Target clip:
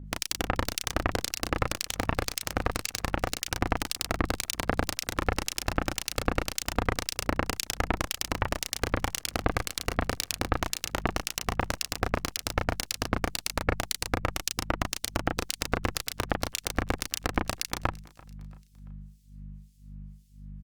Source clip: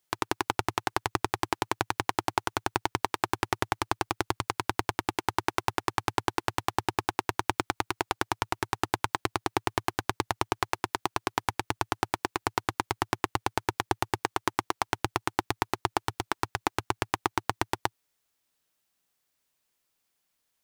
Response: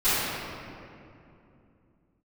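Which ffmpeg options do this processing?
-filter_complex "[0:a]highpass=44,highshelf=f=10000:g=-11,acrossover=split=5200[s0][s1];[s0]asoftclip=type=hard:threshold=0.178[s2];[s1]acontrast=73[s3];[s2][s3]amix=inputs=2:normalize=0,aeval=exprs='0.335*(cos(1*acos(clip(val(0)/0.335,-1,1)))-cos(1*PI/2))+0.15*(cos(3*acos(clip(val(0)/0.335,-1,1)))-cos(3*PI/2))+0.0266*(cos(6*acos(clip(val(0)/0.335,-1,1)))-cos(6*PI/2))':c=same,aeval=exprs='val(0)+0.002*(sin(2*PI*50*n/s)+sin(2*PI*2*50*n/s)/2+sin(2*PI*3*50*n/s)/3+sin(2*PI*4*50*n/s)/4+sin(2*PI*5*50*n/s)/5)':c=same,apsyclip=5.01,acrossover=split=2500[s4][s5];[s4]aeval=exprs='val(0)*(1-1/2+1/2*cos(2*PI*1.9*n/s))':c=same[s6];[s5]aeval=exprs='val(0)*(1-1/2-1/2*cos(2*PI*1.9*n/s))':c=same[s7];[s6][s7]amix=inputs=2:normalize=0,asplit=2[s8][s9];[s9]adelay=34,volume=0.562[s10];[s8][s10]amix=inputs=2:normalize=0,aecho=1:1:339|678|1017:0.0631|0.0284|0.0128" -ar 48000 -c:a libopus -b:a 48k

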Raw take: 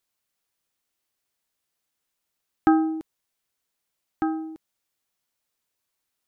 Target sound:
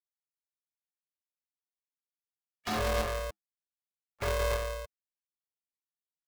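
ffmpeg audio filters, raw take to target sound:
-filter_complex "[0:a]afftfilt=real='re*gte(hypot(re,im),0.01)':imag='im*gte(hypot(re,im),0.01)':win_size=1024:overlap=0.75,equalizer=f=61:w=5.8:g=-7.5,aeval=exprs='0.0596*(abs(mod(val(0)/0.0596+3,4)-2)-1)':c=same,bass=f=250:g=1,treble=f=4000:g=-9,aecho=1:1:6.1:0.89,acompressor=mode=upward:threshold=0.0141:ratio=2.5,asoftclip=type=tanh:threshold=0.0398,asplit=2[s0][s1];[s1]asetrate=33038,aresample=44100,atempo=1.33484,volume=0.126[s2];[s0][s2]amix=inputs=2:normalize=0,asplit=2[s3][s4];[s4]aecho=0:1:50|57|58|176|290:0.447|0.126|0.422|0.473|0.596[s5];[s3][s5]amix=inputs=2:normalize=0,aeval=exprs='val(0)*sgn(sin(2*PI*260*n/s))':c=same,volume=0.891"

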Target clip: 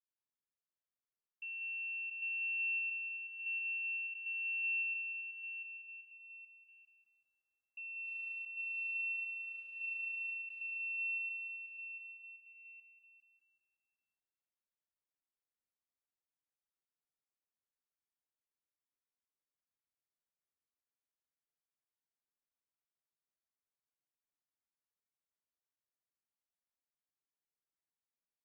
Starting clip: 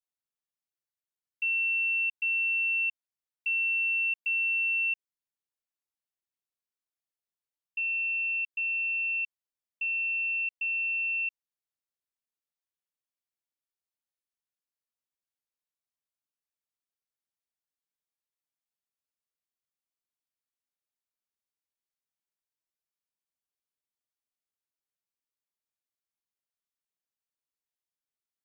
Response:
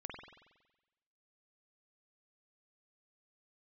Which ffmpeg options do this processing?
-filter_complex "[0:a]lowpass=f=2500:w=0.5412,lowpass=f=2500:w=1.3066,asettb=1/sr,asplit=3[s0][s1][s2];[s0]atrim=end=8.054[s3];[s1]atrim=start=8.05:end=10.33,asetpts=PTS-STARTPTS,afade=t=in:d=0.004:c=qsin,afade=t=out:st=2.276:d=0.004:c=qsin,aphaser=in_gain=1:out_gain=1:delay=2.9:decay=0.22:speed=1.7:type=triangular[s4];[s2]atrim=start=10.326[s5];[s3][s4]acrossfade=d=0.004:c1=hsin:c2=qsin[s6];[s6][s5]acrossfade=d=0.004:c1=qsin:c2=hsin,aecho=1:1:690|1173|1511|1748|1913:0.631|0.398|0.251|0.158|0.1[s7];[1:a]atrim=start_sample=2205,asetrate=26901,aresample=44100[s8];[s7][s8]afir=irnorm=-1:irlink=0,volume=0.398"

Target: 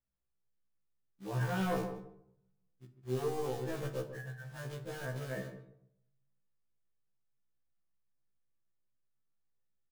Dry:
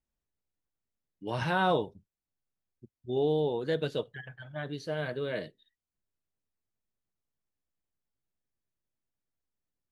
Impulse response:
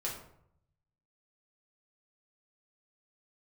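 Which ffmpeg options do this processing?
-filter_complex "[0:a]lowpass=f=2000:w=0.5412,lowpass=f=2000:w=1.3066,equalizer=f=160:t=o:w=0.25:g=11.5,bandreject=f=610:w=12,asoftclip=type=tanh:threshold=0.0708,acrusher=bits=3:mode=log:mix=0:aa=0.000001,asplit=2[s0][s1];[s1]adelay=146,lowpass=f=1100:p=1,volume=0.355,asplit=2[s2][s3];[s3]adelay=146,lowpass=f=1100:p=1,volume=0.18,asplit=2[s4][s5];[s5]adelay=146,lowpass=f=1100:p=1,volume=0.18[s6];[s0][s2][s4][s6]amix=inputs=4:normalize=0,asplit=2[s7][s8];[1:a]atrim=start_sample=2205[s9];[s8][s9]afir=irnorm=-1:irlink=0,volume=0.501[s10];[s7][s10]amix=inputs=2:normalize=0,afftfilt=real='re*1.73*eq(mod(b,3),0)':imag='im*1.73*eq(mod(b,3),0)':win_size=2048:overlap=0.75,volume=0.562"

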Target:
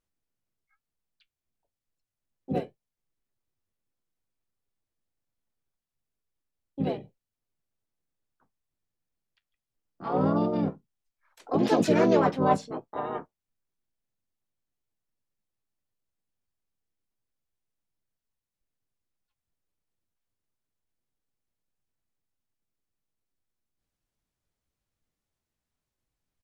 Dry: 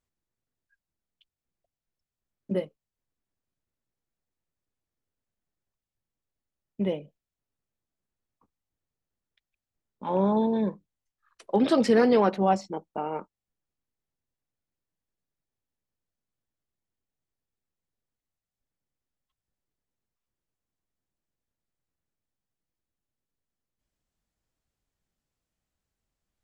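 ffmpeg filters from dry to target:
-filter_complex "[0:a]flanger=delay=7.7:depth=3.3:regen=-58:speed=1:shape=triangular,asplit=4[s0][s1][s2][s3];[s1]asetrate=22050,aresample=44100,atempo=2,volume=0.251[s4];[s2]asetrate=35002,aresample=44100,atempo=1.25992,volume=0.891[s5];[s3]asetrate=58866,aresample=44100,atempo=0.749154,volume=1[s6];[s0][s4][s5][s6]amix=inputs=4:normalize=0,volume=0.841"

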